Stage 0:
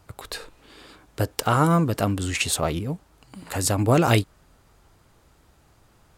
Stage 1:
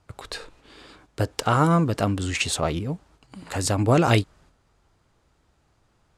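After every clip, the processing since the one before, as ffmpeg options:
-af "lowpass=8.1k,agate=range=-7dB:threshold=-53dB:ratio=16:detection=peak"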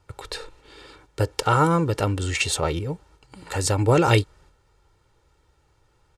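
-af "aecho=1:1:2.2:0.6"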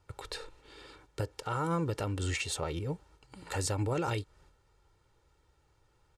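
-af "alimiter=limit=-17dB:level=0:latency=1:release=240,volume=-6dB"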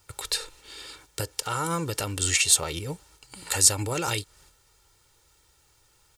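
-af "crystalizer=i=7:c=0,volume=1dB"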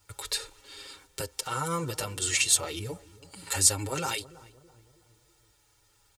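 -filter_complex "[0:a]asplit=2[a][b];[b]adelay=326,lowpass=f=900:p=1,volume=-17.5dB,asplit=2[c][d];[d]adelay=326,lowpass=f=900:p=1,volume=0.49,asplit=2[e][f];[f]adelay=326,lowpass=f=900:p=1,volume=0.49,asplit=2[g][h];[h]adelay=326,lowpass=f=900:p=1,volume=0.49[i];[a][c][e][g][i]amix=inputs=5:normalize=0,asplit=2[j][k];[k]adelay=6.6,afreqshift=-0.35[l];[j][l]amix=inputs=2:normalize=1"

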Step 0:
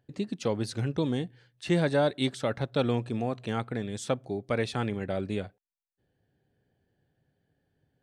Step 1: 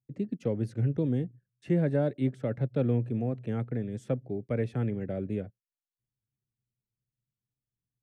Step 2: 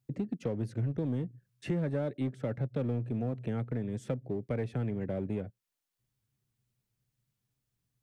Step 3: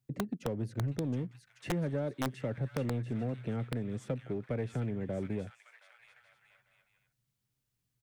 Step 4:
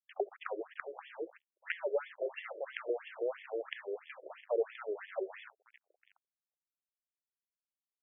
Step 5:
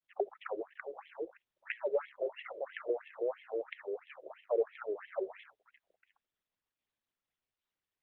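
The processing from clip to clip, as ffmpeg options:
-filter_complex "[0:a]anlmdn=0.00251,equalizer=f=125:t=o:w=1:g=12,equalizer=f=250:t=o:w=1:g=6,equalizer=f=500:t=o:w=1:g=7,equalizer=f=1k:t=o:w=1:g=-7,equalizer=f=2k:t=o:w=1:g=4,equalizer=f=4k:t=o:w=1:g=-11,equalizer=f=8k:t=o:w=1:g=-6,acrossover=split=270|380|2600[a][b][c][d];[d]alimiter=level_in=14dB:limit=-24dB:level=0:latency=1:release=361,volume=-14dB[e];[a][b][c][e]amix=inputs=4:normalize=0,volume=-9dB"
-filter_complex "[0:a]asplit=2[a][b];[b]asoftclip=type=hard:threshold=-29.5dB,volume=-4dB[c];[a][c]amix=inputs=2:normalize=0,acompressor=threshold=-39dB:ratio=2.5,volume=4dB"
-filter_complex "[0:a]acrossover=split=440|1200[a][b][c];[a]aeval=exprs='(mod(16.8*val(0)+1,2)-1)/16.8':c=same[d];[c]aecho=1:1:720|1152|1411|1567|1660:0.631|0.398|0.251|0.158|0.1[e];[d][b][e]amix=inputs=3:normalize=0,volume=-1.5dB"
-af "aecho=1:1:68|136|204:0.0631|0.0334|0.0177,acrusher=bits=7:mix=0:aa=0.5,afftfilt=real='re*between(b*sr/1024,450*pow(2500/450,0.5+0.5*sin(2*PI*3*pts/sr))/1.41,450*pow(2500/450,0.5+0.5*sin(2*PI*3*pts/sr))*1.41)':imag='im*between(b*sr/1024,450*pow(2500/450,0.5+0.5*sin(2*PI*3*pts/sr))/1.41,450*pow(2500/450,0.5+0.5*sin(2*PI*3*pts/sr))*1.41)':win_size=1024:overlap=0.75,volume=8dB"
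-af "volume=1dB" -ar 48000 -c:a libopus -b:a 8k

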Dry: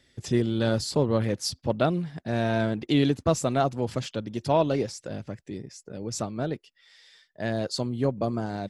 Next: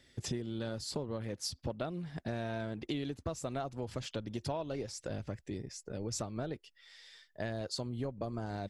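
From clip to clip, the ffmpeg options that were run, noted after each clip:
-af "asubboost=boost=4:cutoff=75,acompressor=threshold=-33dB:ratio=10,volume=-1dB"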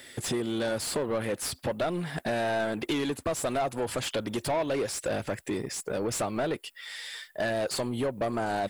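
-filter_complex "[0:a]aexciter=amount=7.9:drive=4:freq=8.1k,asplit=2[a][b];[b]highpass=f=720:p=1,volume=26dB,asoftclip=type=tanh:threshold=-18.5dB[c];[a][c]amix=inputs=2:normalize=0,lowpass=f=2.9k:p=1,volume=-6dB"

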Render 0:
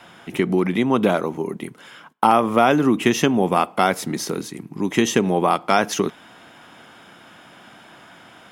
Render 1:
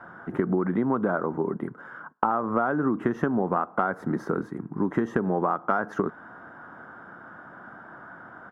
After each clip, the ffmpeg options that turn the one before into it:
-af "firequalizer=gain_entry='entry(790,0);entry(1500,6);entry(2400,-24);entry(4400,-27);entry(9200,-29)':delay=0.05:min_phase=1,acompressor=threshold=-20dB:ratio=12"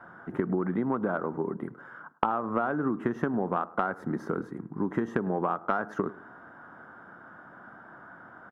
-filter_complex "[0:a]asplit=2[a][b];[b]adelay=104,lowpass=f=1.4k:p=1,volume=-18dB,asplit=2[c][d];[d]adelay=104,lowpass=f=1.4k:p=1,volume=0.31,asplit=2[e][f];[f]adelay=104,lowpass=f=1.4k:p=1,volume=0.31[g];[a][c][e][g]amix=inputs=4:normalize=0,aeval=exprs='0.562*(cos(1*acos(clip(val(0)/0.562,-1,1)))-cos(1*PI/2))+0.0708*(cos(3*acos(clip(val(0)/0.562,-1,1)))-cos(3*PI/2))':c=same"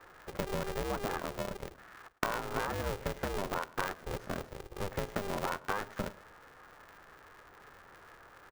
-filter_complex "[0:a]acrossover=split=200[a][b];[a]asoftclip=type=hard:threshold=-35.5dB[c];[c][b]amix=inputs=2:normalize=0,aeval=exprs='val(0)*sgn(sin(2*PI*200*n/s))':c=same,volume=-6.5dB"

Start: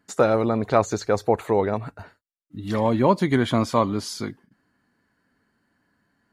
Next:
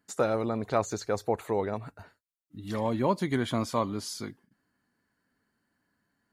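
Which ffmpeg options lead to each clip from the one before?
-af "highshelf=f=6.2k:g=7.5,volume=-8dB"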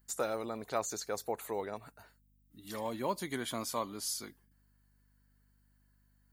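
-af "aemphasis=mode=production:type=bsi,aeval=exprs='val(0)+0.000794*(sin(2*PI*50*n/s)+sin(2*PI*2*50*n/s)/2+sin(2*PI*3*50*n/s)/3+sin(2*PI*4*50*n/s)/4+sin(2*PI*5*50*n/s)/5)':c=same,volume=-6.5dB"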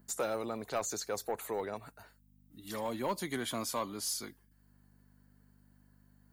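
-filter_complex "[0:a]acrossover=split=120|1000[a][b][c];[b]acompressor=mode=upward:threshold=-58dB:ratio=2.5[d];[a][d][c]amix=inputs=3:normalize=0,asoftclip=type=tanh:threshold=-27dB,volume=2dB"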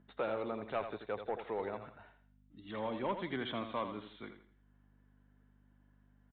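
-af "aecho=1:1:83|166|249|332:0.355|0.114|0.0363|0.0116,aresample=8000,aresample=44100,volume=-2dB"

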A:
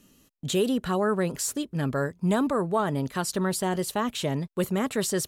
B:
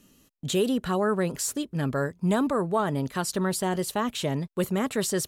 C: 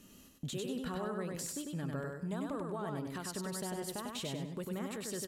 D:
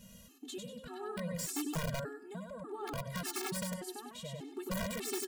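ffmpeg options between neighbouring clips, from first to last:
-af anull
-filter_complex "[0:a]acompressor=threshold=-35dB:ratio=5,alimiter=level_in=7.5dB:limit=-24dB:level=0:latency=1:release=439,volume=-7.5dB,asplit=2[a][b];[b]aecho=0:1:98|196|294|392:0.708|0.234|0.0771|0.0254[c];[a][c]amix=inputs=2:normalize=0"
-af "tremolo=f=0.6:d=0.64,aeval=exprs='(mod(44.7*val(0)+1,2)-1)/44.7':c=same,afftfilt=real='re*gt(sin(2*PI*1.7*pts/sr)*(1-2*mod(floor(b*sr/1024/230),2)),0)':imag='im*gt(sin(2*PI*1.7*pts/sr)*(1-2*mod(floor(b*sr/1024/230),2)),0)':win_size=1024:overlap=0.75,volume=6dB"

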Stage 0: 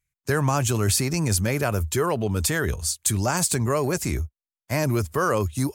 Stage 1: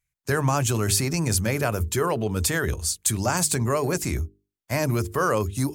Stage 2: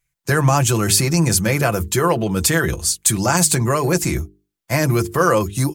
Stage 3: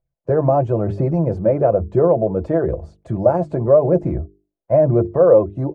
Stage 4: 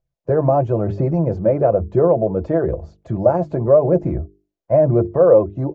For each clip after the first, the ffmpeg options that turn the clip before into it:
-af "bandreject=f=50:t=h:w=6,bandreject=f=100:t=h:w=6,bandreject=f=150:t=h:w=6,bandreject=f=200:t=h:w=6,bandreject=f=250:t=h:w=6,bandreject=f=300:t=h:w=6,bandreject=f=350:t=h:w=6,bandreject=f=400:t=h:w=6,bandreject=f=450:t=h:w=6"
-af "aecho=1:1:5.9:0.5,volume=6dB"
-af "aphaser=in_gain=1:out_gain=1:delay=3.4:decay=0.3:speed=1:type=triangular,lowpass=f=600:t=q:w=4.9,volume=-3dB"
-ar 16000 -c:a libvorbis -b:a 96k

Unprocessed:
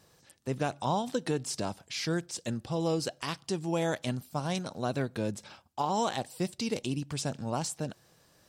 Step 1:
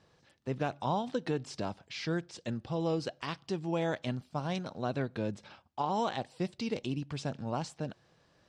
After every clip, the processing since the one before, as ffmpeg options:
-af "lowpass=4k,volume=-2dB"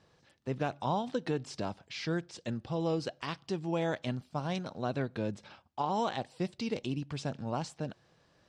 -af anull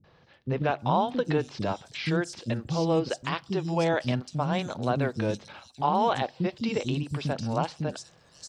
-filter_complex "[0:a]acrossover=split=300|4700[a][b][c];[b]adelay=40[d];[c]adelay=790[e];[a][d][e]amix=inputs=3:normalize=0,volume=8dB"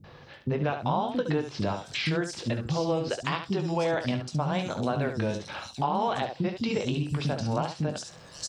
-af "aecho=1:1:20|70:0.355|0.335,acompressor=threshold=-39dB:ratio=2.5,volume=9dB"

